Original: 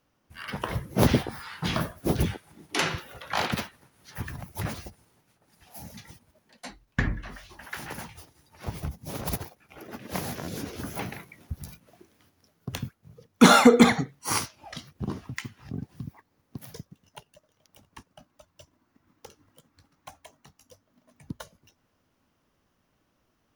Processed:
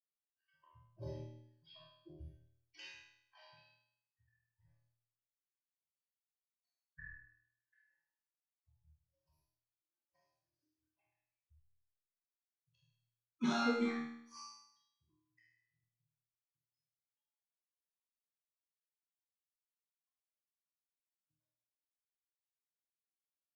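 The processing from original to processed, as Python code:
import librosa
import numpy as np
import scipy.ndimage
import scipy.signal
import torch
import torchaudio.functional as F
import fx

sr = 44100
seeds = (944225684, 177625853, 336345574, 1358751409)

y = fx.bin_expand(x, sr, power=3.0)
y = scipy.signal.sosfilt(scipy.signal.butter(4, 5900.0, 'lowpass', fs=sr, output='sos'), y)
y = fx.resonator_bank(y, sr, root=39, chord='fifth', decay_s=0.71)
y = fx.rev_schroeder(y, sr, rt60_s=0.46, comb_ms=29, drr_db=-1.0)
y = F.gain(torch.from_numpy(y), -3.5).numpy()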